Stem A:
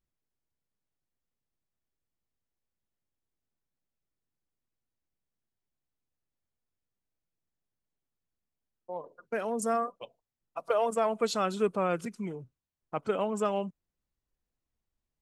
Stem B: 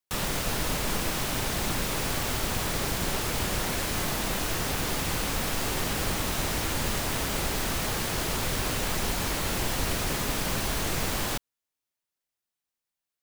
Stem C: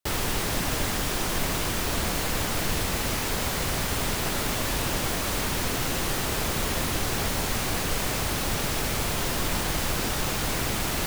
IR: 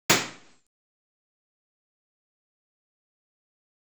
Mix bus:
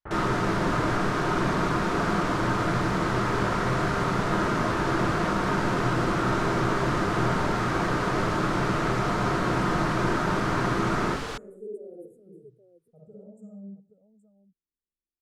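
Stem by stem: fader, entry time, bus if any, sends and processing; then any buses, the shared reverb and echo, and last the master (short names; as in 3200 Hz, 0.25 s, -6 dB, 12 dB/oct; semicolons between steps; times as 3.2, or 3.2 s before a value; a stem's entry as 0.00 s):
-14.0 dB, 0.00 s, send -20 dB, echo send -9 dB, elliptic band-stop 470–9300 Hz, stop band 40 dB; endless phaser +0.26 Hz
-5.5 dB, 0.00 s, no send, no echo send, LPF 5800 Hz 12 dB/oct
-10.0 dB, 0.00 s, send -11 dB, no echo send, LPF 1700 Hz 24 dB/oct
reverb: on, RT60 0.50 s, pre-delay 46 ms
echo: echo 0.821 s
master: bell 1300 Hz +7 dB 0.67 oct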